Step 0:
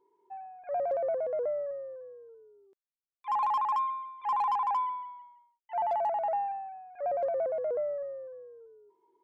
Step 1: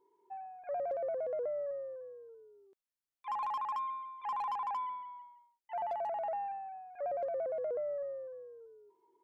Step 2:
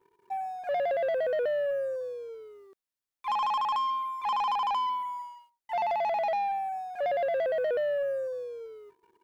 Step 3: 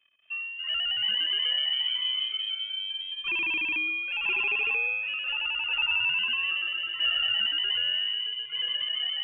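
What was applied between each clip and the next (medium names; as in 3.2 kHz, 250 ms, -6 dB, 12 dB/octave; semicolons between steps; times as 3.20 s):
dynamic bell 900 Hz, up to -5 dB, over -42 dBFS, Q 2.7; compression, threshold -32 dBFS, peak gain reduction 5 dB; trim -1.5 dB
waveshaping leveller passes 2; trim +4.5 dB
ever faster or slower copies 223 ms, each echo -3 st, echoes 3; bass shelf 380 Hz -5 dB; frequency inversion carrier 3.5 kHz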